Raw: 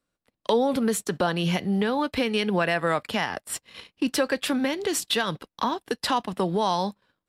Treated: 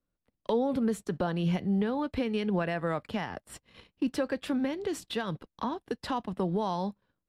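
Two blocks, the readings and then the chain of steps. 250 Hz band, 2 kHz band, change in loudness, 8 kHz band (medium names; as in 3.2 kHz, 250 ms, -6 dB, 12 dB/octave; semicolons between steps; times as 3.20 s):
-3.5 dB, -10.5 dB, -5.5 dB, -16.0 dB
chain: tilt EQ -2.5 dB/octave; trim -8.5 dB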